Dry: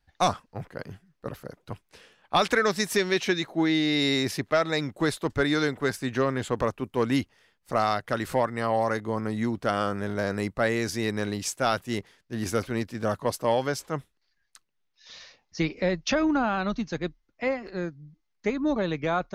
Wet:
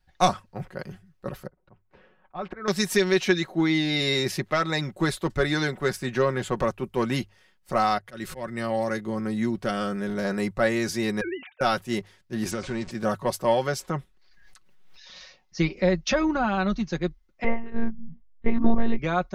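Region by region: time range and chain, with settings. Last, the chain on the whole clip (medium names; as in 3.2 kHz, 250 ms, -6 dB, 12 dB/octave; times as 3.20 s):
1.47–2.68 s: low-pass 1.4 kHz + slow attack 300 ms
7.98–10.25 s: dynamic bell 910 Hz, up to -7 dB, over -38 dBFS, Q 0.98 + slow attack 182 ms
11.21–11.61 s: formants replaced by sine waves + bass shelf 460 Hz -10 dB
12.51–12.91 s: jump at every zero crossing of -38 dBFS + steep low-pass 8.5 kHz 48 dB/octave + compression 4:1, threshold -26 dBFS
13.89–15.16 s: treble shelf 4.5 kHz -7 dB + swell ahead of each attack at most 35 dB/s
17.44–18.99 s: tilt EQ -2.5 dB/octave + monotone LPC vocoder at 8 kHz 230 Hz
whole clip: bass shelf 88 Hz +6 dB; hum notches 50/100 Hz; comb 5.4 ms, depth 58%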